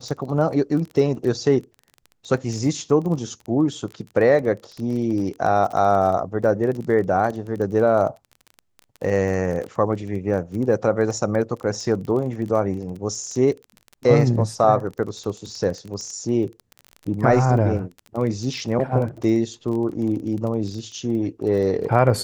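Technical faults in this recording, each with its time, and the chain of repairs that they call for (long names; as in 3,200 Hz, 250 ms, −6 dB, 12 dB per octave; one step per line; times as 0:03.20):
surface crackle 21 per second −29 dBFS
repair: click removal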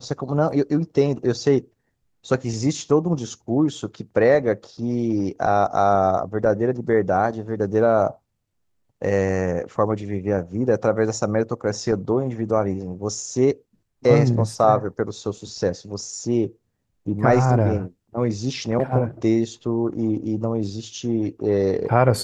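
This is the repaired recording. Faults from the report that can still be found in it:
none of them is left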